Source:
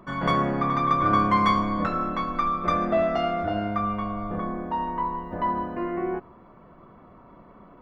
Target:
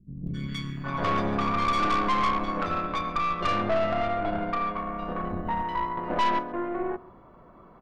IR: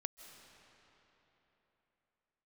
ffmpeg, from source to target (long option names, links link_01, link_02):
-filter_complex "[0:a]asettb=1/sr,asplit=3[link_01][link_02][link_03];[link_01]atrim=end=2.574[link_04];[link_02]atrim=start=2.57:end=4.5,asetpts=PTS-STARTPTS,afade=type=in:duration=0.004:curve=qsin,afade=type=out:start_time=1.926:duration=0.004:curve=qsin,lowpass=frequency=3500:width_type=q:width=1.7[link_05];[link_03]atrim=start=4.496[link_06];[link_04][link_05]acrossfade=duration=0.004:curve1=hsin:curve2=qsin[link_07];[link_07][link_06]acrossfade=duration=0.004:curve1=qsin:curve2=hsin,asettb=1/sr,asplit=3[link_08][link_09][link_10];[link_08]atrim=end=5.204[link_11];[link_09]atrim=start=5.2:end=5.62,asetpts=PTS-STARTPTS,afade=type=in:duration=0.004:curve=qsin,afade=type=out:start_time=0.416:duration=0.004:curve=qsin,acontrast=56[link_12];[link_10]atrim=start=5.616[link_13];[link_11][link_12]acrossfade=duration=0.004:curve1=hsin:curve2=qsin[link_14];[link_14][link_13]acrossfade=duration=0.004:curve1=qsin:curve2=hsin,acrossover=split=210|2300[link_15][link_16][link_17];[link_17]adelay=270[link_18];[link_16]adelay=770[link_19];[link_15][link_19][link_18]amix=inputs=3:normalize=0,aeval=exprs='(tanh(14.1*val(0)+0.6)-tanh(0.6))/14.1':channel_layout=same,asplit=2[link_20][link_21];[link_21]aecho=0:1:133:0.075[link_22];[link_20][link_22]amix=inputs=2:normalize=0,volume=2.5dB"